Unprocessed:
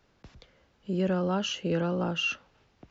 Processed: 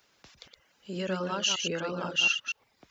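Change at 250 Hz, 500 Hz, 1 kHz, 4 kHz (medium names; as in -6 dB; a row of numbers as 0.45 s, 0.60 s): -7.5 dB, -3.5 dB, -0.5 dB, +6.0 dB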